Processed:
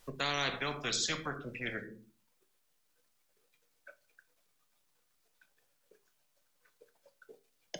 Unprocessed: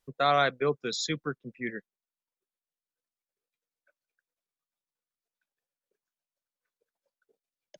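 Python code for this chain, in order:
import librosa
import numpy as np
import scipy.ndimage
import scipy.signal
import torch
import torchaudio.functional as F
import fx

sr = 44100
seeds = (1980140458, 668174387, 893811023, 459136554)

y = fx.room_shoebox(x, sr, seeds[0], volume_m3=160.0, walls='furnished', distance_m=0.47)
y = fx.spectral_comp(y, sr, ratio=4.0)
y = y * librosa.db_to_amplitude(-7.5)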